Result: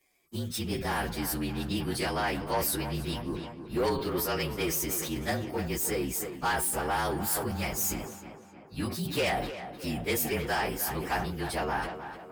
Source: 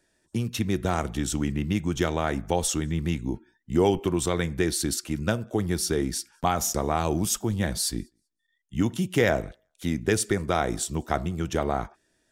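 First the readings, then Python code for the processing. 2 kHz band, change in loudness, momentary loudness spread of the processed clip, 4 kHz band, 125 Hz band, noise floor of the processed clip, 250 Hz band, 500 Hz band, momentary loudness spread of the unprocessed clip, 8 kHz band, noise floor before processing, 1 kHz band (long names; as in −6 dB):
−0.5 dB, −4.0 dB, 9 LU, −2.0 dB, −7.0 dB, −49 dBFS, −6.5 dB, −5.0 dB, 7 LU, −4.0 dB, −74 dBFS, −1.5 dB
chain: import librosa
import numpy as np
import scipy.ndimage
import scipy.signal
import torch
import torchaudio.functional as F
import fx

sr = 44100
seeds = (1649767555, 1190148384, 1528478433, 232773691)

p1 = fx.partial_stretch(x, sr, pct=113)
p2 = fx.low_shelf(p1, sr, hz=450.0, db=-11.5)
p3 = 10.0 ** (-27.0 / 20.0) * np.tanh(p2 / 10.0 ** (-27.0 / 20.0))
p4 = p3 + fx.echo_tape(p3, sr, ms=310, feedback_pct=65, wet_db=-7.5, lp_hz=2500.0, drive_db=32.0, wow_cents=31, dry=0)
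p5 = fx.sustainer(p4, sr, db_per_s=56.0)
y = F.gain(torch.from_numpy(p5), 4.5).numpy()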